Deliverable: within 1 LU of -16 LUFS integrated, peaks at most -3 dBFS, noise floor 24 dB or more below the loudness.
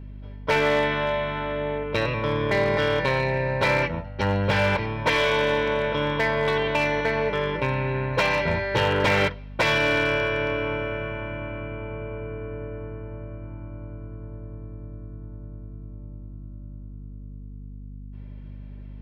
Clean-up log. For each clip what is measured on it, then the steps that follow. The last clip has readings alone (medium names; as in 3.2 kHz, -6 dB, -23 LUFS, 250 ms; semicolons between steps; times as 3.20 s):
clipped samples 0.8%; clipping level -15.5 dBFS; hum 50 Hz; highest harmonic 250 Hz; hum level -36 dBFS; loudness -24.0 LUFS; peak level -15.5 dBFS; loudness target -16.0 LUFS
-> clip repair -15.5 dBFS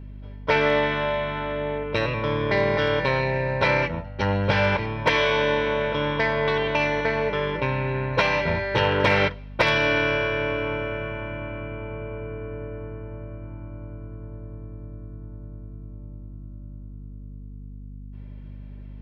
clipped samples 0.0%; hum 50 Hz; highest harmonic 250 Hz; hum level -36 dBFS
-> de-hum 50 Hz, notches 5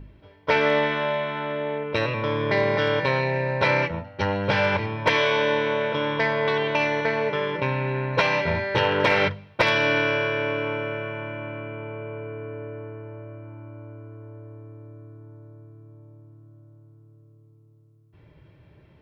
hum not found; loudness -23.5 LUFS; peak level -6.5 dBFS; loudness target -16.0 LUFS
-> trim +7.5 dB; peak limiter -3 dBFS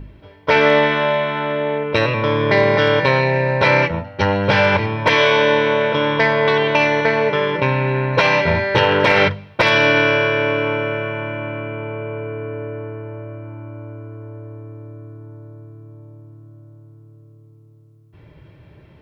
loudness -16.5 LUFS; peak level -3.0 dBFS; noise floor -47 dBFS